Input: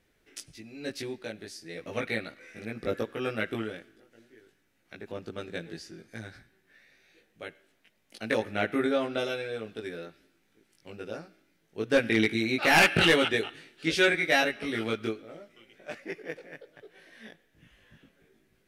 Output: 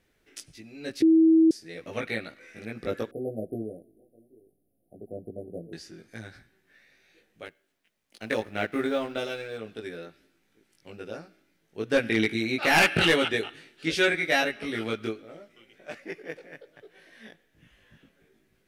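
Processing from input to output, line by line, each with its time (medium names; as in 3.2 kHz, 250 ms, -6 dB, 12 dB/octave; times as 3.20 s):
1.02–1.51 s: bleep 323 Hz -14.5 dBFS
3.11–5.73 s: brick-wall FIR band-stop 770–9200 Hz
7.45–9.58 s: companding laws mixed up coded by A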